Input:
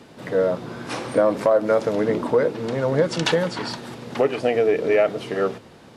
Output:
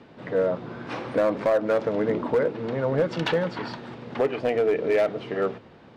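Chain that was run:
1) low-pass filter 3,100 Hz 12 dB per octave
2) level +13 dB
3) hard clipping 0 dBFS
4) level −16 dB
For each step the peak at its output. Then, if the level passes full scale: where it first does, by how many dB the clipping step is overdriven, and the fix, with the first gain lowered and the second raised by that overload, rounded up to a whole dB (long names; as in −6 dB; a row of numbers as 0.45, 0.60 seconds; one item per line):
−6.5, +6.5, 0.0, −16.0 dBFS
step 2, 6.5 dB
step 2 +6 dB, step 4 −9 dB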